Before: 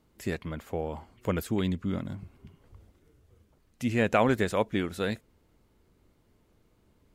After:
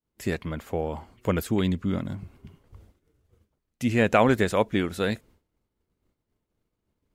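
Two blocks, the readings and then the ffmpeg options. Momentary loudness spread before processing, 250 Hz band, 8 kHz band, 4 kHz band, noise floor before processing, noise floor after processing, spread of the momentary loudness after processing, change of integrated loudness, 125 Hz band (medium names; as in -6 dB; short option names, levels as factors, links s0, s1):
13 LU, +4.0 dB, +4.0 dB, +4.0 dB, -67 dBFS, -82 dBFS, 13 LU, +4.0 dB, +4.0 dB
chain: -af "agate=range=0.0224:threshold=0.00224:ratio=3:detection=peak,volume=1.58"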